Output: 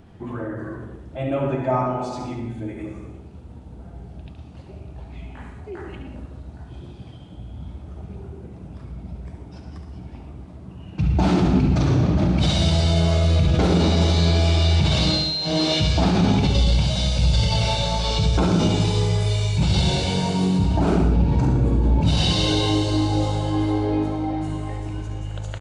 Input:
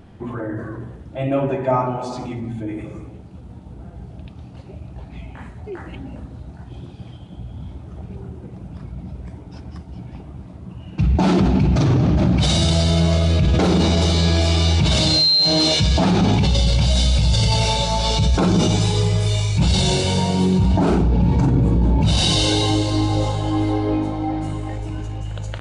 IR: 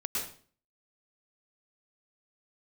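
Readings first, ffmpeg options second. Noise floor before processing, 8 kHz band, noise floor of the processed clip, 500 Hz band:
−39 dBFS, −6.5 dB, −41 dBFS, −2.0 dB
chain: -filter_complex "[0:a]asplit=2[link_01][link_02];[1:a]atrim=start_sample=2205[link_03];[link_02][link_03]afir=irnorm=-1:irlink=0,volume=-9.5dB[link_04];[link_01][link_04]amix=inputs=2:normalize=0,acrossover=split=5300[link_05][link_06];[link_06]acompressor=threshold=-35dB:ratio=4:attack=1:release=60[link_07];[link_05][link_07]amix=inputs=2:normalize=0,aecho=1:1:71:0.422,volume=-5.5dB"

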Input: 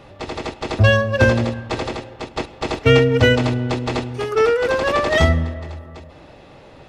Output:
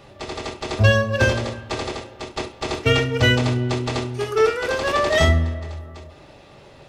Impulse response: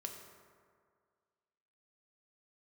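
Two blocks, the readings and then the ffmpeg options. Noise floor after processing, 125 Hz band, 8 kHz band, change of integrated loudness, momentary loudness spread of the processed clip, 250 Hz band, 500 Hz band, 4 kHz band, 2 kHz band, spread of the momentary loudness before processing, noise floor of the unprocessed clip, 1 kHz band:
−47 dBFS, −2.0 dB, +2.5 dB, −2.5 dB, 15 LU, −4.0 dB, −4.0 dB, +0.5 dB, −2.0 dB, 15 LU, −44 dBFS, −2.0 dB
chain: -filter_complex "[0:a]highshelf=frequency=3500:gain=7.5[link_01];[1:a]atrim=start_sample=2205,atrim=end_sample=3528[link_02];[link_01][link_02]afir=irnorm=-1:irlink=0"

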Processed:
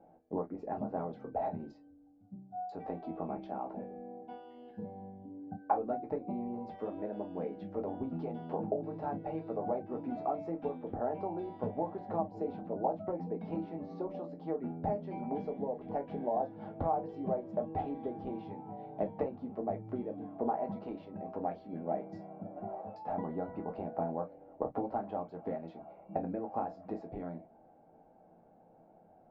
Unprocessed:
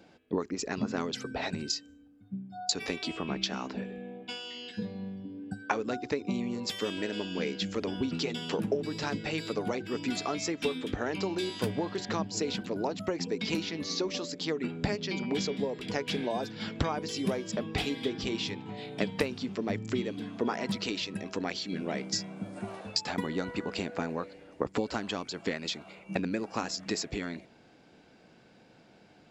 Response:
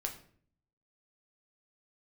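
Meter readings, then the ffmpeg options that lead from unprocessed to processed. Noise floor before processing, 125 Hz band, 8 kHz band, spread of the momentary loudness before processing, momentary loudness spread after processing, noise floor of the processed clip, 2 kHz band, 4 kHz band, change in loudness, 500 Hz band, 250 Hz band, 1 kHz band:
−59 dBFS, −6.0 dB, below −40 dB, 7 LU, 10 LU, −62 dBFS, −21.5 dB, below −30 dB, −5.0 dB, −2.5 dB, −6.0 dB, +1.5 dB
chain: -filter_complex "[0:a]lowpass=frequency=740:width_type=q:width=5.1[link_01];[1:a]atrim=start_sample=2205,atrim=end_sample=4410,asetrate=79380,aresample=44100[link_02];[link_01][link_02]afir=irnorm=-1:irlink=0,volume=-2.5dB"

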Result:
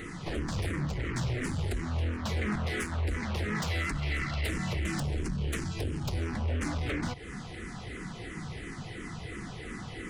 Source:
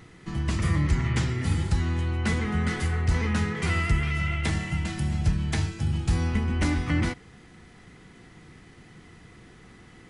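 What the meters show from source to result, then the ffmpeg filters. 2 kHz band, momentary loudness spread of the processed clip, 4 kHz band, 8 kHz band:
−4.0 dB, 9 LU, −2.5 dB, −3.0 dB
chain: -filter_complex "[0:a]acompressor=threshold=-33dB:ratio=12,aeval=exprs='0.0531*sin(PI/2*2.82*val(0)/0.0531)':channel_layout=same,asplit=2[link_01][link_02];[link_02]afreqshift=-2.9[link_03];[link_01][link_03]amix=inputs=2:normalize=1"

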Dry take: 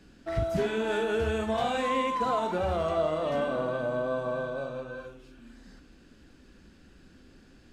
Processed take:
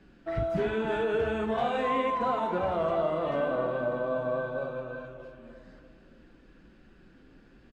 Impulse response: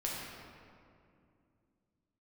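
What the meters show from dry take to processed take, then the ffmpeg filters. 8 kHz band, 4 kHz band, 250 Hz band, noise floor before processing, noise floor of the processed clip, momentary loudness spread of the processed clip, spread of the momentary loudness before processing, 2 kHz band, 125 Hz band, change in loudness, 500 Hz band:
can't be measured, −4.5 dB, −0.5 dB, −56 dBFS, −57 dBFS, 10 LU, 8 LU, −0.5 dB, −2.0 dB, 0.0 dB, 0.0 dB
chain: -filter_complex "[0:a]bass=frequency=250:gain=-2,treble=frequency=4000:gain=-14,asplit=2[link_01][link_02];[link_02]adelay=292,lowpass=frequency=2000:poles=1,volume=-10dB,asplit=2[link_03][link_04];[link_04]adelay=292,lowpass=frequency=2000:poles=1,volume=0.52,asplit=2[link_05][link_06];[link_06]adelay=292,lowpass=frequency=2000:poles=1,volume=0.52,asplit=2[link_07][link_08];[link_08]adelay=292,lowpass=frequency=2000:poles=1,volume=0.52,asplit=2[link_09][link_10];[link_10]adelay=292,lowpass=frequency=2000:poles=1,volume=0.52,asplit=2[link_11][link_12];[link_12]adelay=292,lowpass=frequency=2000:poles=1,volume=0.52[link_13];[link_01][link_03][link_05][link_07][link_09][link_11][link_13]amix=inputs=7:normalize=0,flanger=delay=5.1:depth=1.6:regen=-57:speed=1.3:shape=triangular,volume=4dB"

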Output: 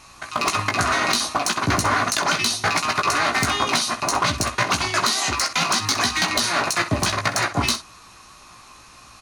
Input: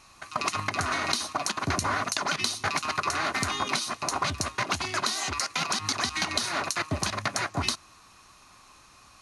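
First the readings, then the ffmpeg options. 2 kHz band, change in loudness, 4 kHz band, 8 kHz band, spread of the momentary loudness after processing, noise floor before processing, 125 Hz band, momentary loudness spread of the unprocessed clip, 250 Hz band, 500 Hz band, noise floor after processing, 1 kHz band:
+8.0 dB, +7.5 dB, +7.5 dB, +7.5 dB, 3 LU, −55 dBFS, +7.5 dB, 3 LU, +8.0 dB, +8.0 dB, −47 dBFS, +8.0 dB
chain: -af "asoftclip=type=hard:threshold=-20dB,aecho=1:1:17|64:0.531|0.237,volume=7dB"

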